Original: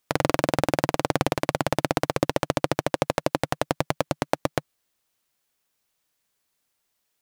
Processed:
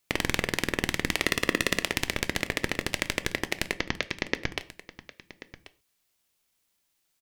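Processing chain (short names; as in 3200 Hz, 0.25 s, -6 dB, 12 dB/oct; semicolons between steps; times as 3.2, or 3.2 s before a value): HPF 820 Hz 24 dB/oct; 1.26–1.79 comb 1.3 ms, depth 89%; 3.72–4.58 steep low-pass 5400 Hz 72 dB/oct; ring modulator 1100 Hz; echo 1.086 s -17 dB; on a send at -13 dB: reverb, pre-delay 3 ms; on the sum: gain +4 dB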